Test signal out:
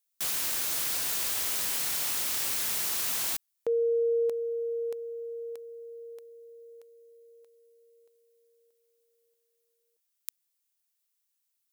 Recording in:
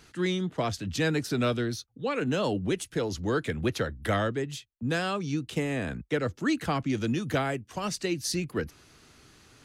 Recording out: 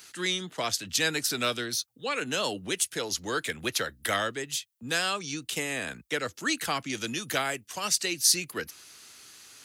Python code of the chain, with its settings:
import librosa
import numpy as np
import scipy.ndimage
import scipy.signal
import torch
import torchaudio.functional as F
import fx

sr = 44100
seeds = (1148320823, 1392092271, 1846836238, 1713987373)

y = fx.tilt_eq(x, sr, slope=4.0)